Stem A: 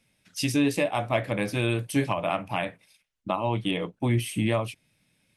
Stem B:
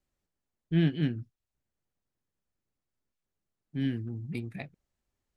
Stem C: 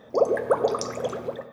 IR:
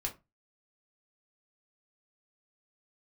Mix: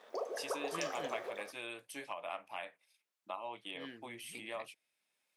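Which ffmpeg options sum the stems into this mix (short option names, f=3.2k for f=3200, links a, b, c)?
-filter_complex "[0:a]volume=-13dB,asplit=2[a][b];[1:a]volume=3dB[c];[2:a]acompressor=threshold=-35dB:ratio=2.5,aeval=exprs='sgn(val(0))*max(abs(val(0))-0.00141,0)':c=same,volume=-6dB,asplit=2[d][e];[e]volume=-3.5dB[f];[b]apad=whole_len=236503[g];[c][g]sidechaincompress=threshold=-44dB:ratio=4:attack=6.6:release=773[h];[3:a]atrim=start_sample=2205[i];[f][i]afir=irnorm=-1:irlink=0[j];[a][h][d][j]amix=inputs=4:normalize=0,highpass=590"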